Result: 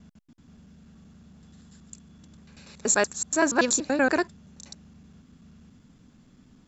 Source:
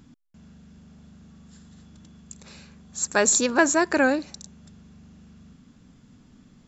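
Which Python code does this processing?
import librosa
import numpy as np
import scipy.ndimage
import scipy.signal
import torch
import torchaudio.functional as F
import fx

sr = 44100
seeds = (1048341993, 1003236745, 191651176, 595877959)

y = fx.block_reorder(x, sr, ms=95.0, group=5)
y = y * 10.0 ** (-2.0 / 20.0)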